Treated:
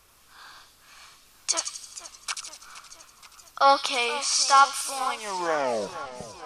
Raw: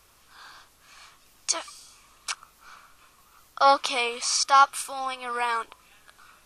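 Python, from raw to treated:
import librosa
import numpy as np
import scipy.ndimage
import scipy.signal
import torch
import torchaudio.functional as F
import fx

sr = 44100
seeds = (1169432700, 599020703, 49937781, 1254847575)

y = fx.tape_stop_end(x, sr, length_s=1.42)
y = fx.echo_wet_highpass(y, sr, ms=84, feedback_pct=51, hz=3700.0, wet_db=-3)
y = fx.echo_warbled(y, sr, ms=473, feedback_pct=66, rate_hz=2.8, cents=137, wet_db=-15)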